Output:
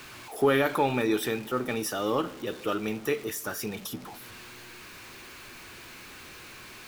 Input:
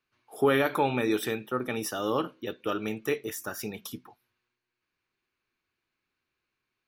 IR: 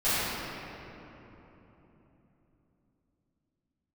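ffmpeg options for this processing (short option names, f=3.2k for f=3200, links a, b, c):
-filter_complex "[0:a]aeval=exprs='val(0)+0.5*0.0106*sgn(val(0))':c=same,asplit=2[a][b];[1:a]atrim=start_sample=2205[c];[b][c]afir=irnorm=-1:irlink=0,volume=-37dB[d];[a][d]amix=inputs=2:normalize=0"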